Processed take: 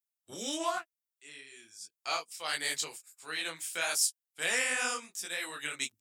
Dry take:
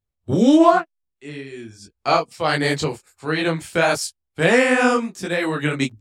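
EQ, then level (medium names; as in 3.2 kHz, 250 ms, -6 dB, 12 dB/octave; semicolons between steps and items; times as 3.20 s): differentiator; band-stop 4.3 kHz, Q 12; 0.0 dB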